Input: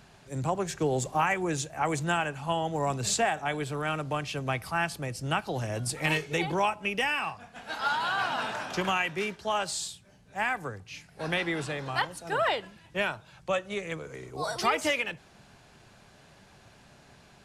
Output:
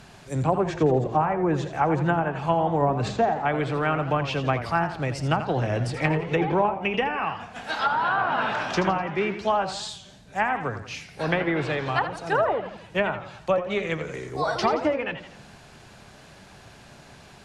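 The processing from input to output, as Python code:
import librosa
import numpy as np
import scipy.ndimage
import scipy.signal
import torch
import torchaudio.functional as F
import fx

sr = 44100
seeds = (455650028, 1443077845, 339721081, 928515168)

y = fx.env_lowpass_down(x, sr, base_hz=780.0, full_db=-23.0)
y = fx.echo_warbled(y, sr, ms=84, feedback_pct=47, rate_hz=2.8, cents=146, wet_db=-10.5)
y = F.gain(torch.from_numpy(y), 7.0).numpy()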